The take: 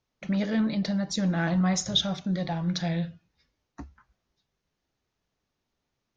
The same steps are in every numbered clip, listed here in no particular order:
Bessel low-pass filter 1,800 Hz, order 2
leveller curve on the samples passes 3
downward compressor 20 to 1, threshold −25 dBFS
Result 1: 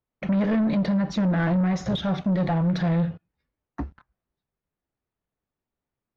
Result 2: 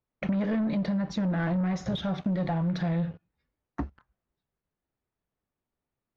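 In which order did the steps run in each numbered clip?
downward compressor, then leveller curve on the samples, then Bessel low-pass filter
leveller curve on the samples, then downward compressor, then Bessel low-pass filter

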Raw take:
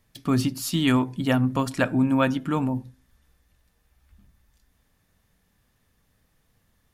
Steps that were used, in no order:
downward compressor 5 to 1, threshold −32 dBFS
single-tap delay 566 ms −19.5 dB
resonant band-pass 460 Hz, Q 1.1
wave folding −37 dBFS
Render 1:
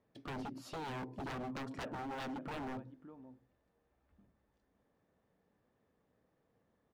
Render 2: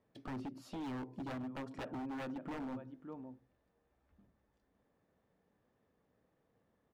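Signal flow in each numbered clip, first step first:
resonant band-pass, then downward compressor, then single-tap delay, then wave folding
single-tap delay, then downward compressor, then resonant band-pass, then wave folding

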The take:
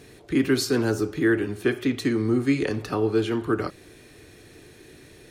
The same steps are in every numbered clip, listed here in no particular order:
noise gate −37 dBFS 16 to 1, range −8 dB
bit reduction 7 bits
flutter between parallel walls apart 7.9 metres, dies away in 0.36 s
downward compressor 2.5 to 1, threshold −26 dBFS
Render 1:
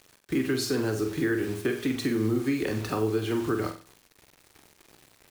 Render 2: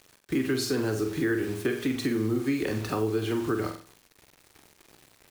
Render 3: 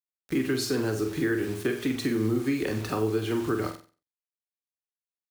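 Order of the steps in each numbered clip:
bit reduction, then downward compressor, then noise gate, then flutter between parallel walls
bit reduction, then noise gate, then flutter between parallel walls, then downward compressor
noise gate, then bit reduction, then downward compressor, then flutter between parallel walls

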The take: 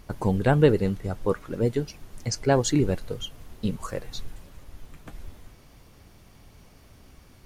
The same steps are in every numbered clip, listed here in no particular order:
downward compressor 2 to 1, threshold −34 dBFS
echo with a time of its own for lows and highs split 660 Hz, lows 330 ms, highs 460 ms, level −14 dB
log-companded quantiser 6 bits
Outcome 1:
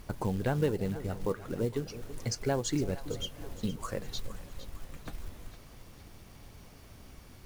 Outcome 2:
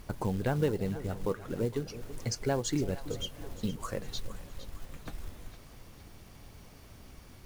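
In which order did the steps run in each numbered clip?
downward compressor, then echo with a time of its own for lows and highs, then log-companded quantiser
downward compressor, then log-companded quantiser, then echo with a time of its own for lows and highs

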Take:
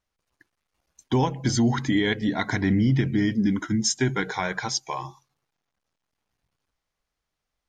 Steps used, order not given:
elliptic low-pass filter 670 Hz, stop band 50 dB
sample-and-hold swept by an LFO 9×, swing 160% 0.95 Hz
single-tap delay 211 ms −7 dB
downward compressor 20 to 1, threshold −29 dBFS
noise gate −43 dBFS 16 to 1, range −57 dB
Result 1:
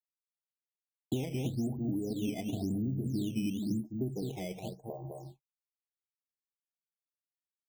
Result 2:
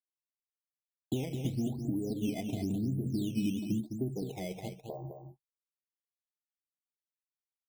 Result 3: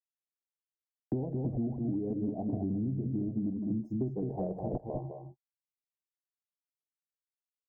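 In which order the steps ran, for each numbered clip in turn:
noise gate, then single-tap delay, then downward compressor, then elliptic low-pass filter, then sample-and-hold swept by an LFO
downward compressor, then noise gate, then elliptic low-pass filter, then sample-and-hold swept by an LFO, then single-tap delay
sample-and-hold swept by an LFO, then elliptic low-pass filter, then noise gate, then single-tap delay, then downward compressor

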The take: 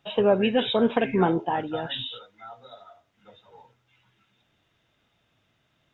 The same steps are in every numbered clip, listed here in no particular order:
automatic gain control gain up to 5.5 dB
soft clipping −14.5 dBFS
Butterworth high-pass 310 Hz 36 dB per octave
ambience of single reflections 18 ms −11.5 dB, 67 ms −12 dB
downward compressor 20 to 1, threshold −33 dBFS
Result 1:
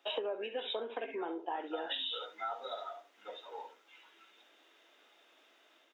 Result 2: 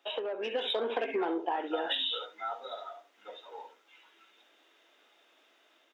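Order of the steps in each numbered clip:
automatic gain control, then ambience of single reflections, then downward compressor, then soft clipping, then Butterworth high-pass
ambience of single reflections, then soft clipping, then Butterworth high-pass, then downward compressor, then automatic gain control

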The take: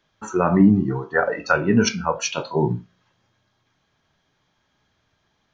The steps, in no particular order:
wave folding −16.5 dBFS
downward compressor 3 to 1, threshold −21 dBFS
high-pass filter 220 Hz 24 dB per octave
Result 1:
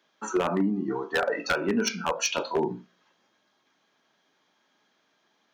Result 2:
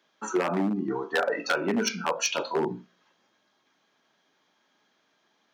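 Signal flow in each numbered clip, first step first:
downward compressor, then high-pass filter, then wave folding
downward compressor, then wave folding, then high-pass filter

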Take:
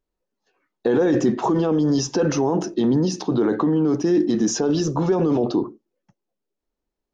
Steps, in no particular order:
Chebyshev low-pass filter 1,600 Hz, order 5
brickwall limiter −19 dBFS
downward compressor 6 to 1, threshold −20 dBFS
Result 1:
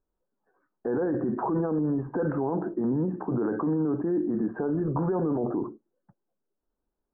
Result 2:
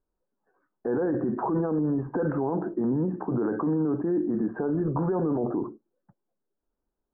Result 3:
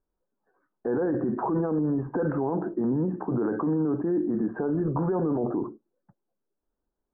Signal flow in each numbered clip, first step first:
downward compressor, then brickwall limiter, then Chebyshev low-pass filter
downward compressor, then Chebyshev low-pass filter, then brickwall limiter
Chebyshev low-pass filter, then downward compressor, then brickwall limiter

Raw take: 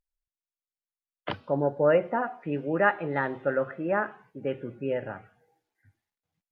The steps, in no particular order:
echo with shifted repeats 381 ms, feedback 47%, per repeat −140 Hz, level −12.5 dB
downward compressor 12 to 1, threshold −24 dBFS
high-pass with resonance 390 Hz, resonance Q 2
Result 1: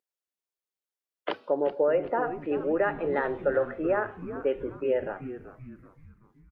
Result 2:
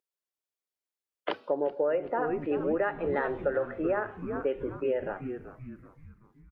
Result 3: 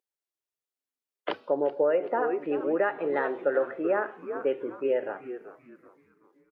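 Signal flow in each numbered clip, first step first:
downward compressor, then high-pass with resonance, then echo with shifted repeats
high-pass with resonance, then echo with shifted repeats, then downward compressor
echo with shifted repeats, then downward compressor, then high-pass with resonance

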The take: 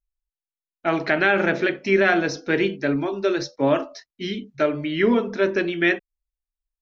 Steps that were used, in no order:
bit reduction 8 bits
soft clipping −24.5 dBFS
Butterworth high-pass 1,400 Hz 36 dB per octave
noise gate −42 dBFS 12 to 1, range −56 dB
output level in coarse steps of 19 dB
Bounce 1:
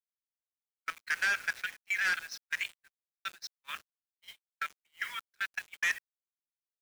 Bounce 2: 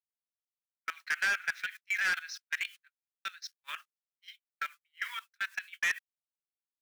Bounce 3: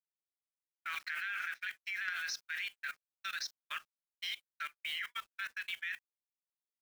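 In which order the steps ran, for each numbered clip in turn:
output level in coarse steps, then Butterworth high-pass, then bit reduction, then soft clipping, then noise gate
bit reduction, then output level in coarse steps, then Butterworth high-pass, then noise gate, then soft clipping
Butterworth high-pass, then bit reduction, then output level in coarse steps, then soft clipping, then noise gate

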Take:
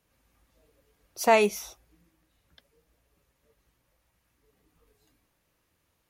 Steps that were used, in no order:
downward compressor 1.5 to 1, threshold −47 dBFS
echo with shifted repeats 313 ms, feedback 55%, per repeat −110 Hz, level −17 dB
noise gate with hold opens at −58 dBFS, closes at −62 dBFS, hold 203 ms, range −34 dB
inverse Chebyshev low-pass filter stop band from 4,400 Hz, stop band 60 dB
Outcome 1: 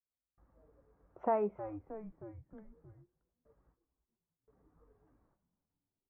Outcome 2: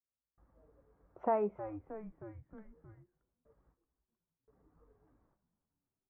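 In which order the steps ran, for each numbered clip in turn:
noise gate with hold, then inverse Chebyshev low-pass filter, then echo with shifted repeats, then downward compressor
noise gate with hold, then echo with shifted repeats, then inverse Chebyshev low-pass filter, then downward compressor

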